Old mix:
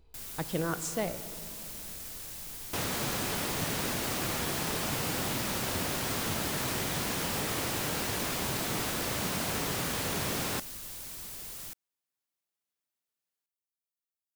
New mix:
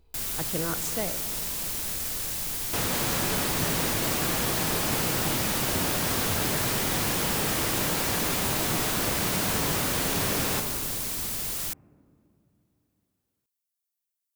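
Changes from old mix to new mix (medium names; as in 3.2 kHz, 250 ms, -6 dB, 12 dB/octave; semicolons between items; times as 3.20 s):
first sound +11.0 dB; second sound: send on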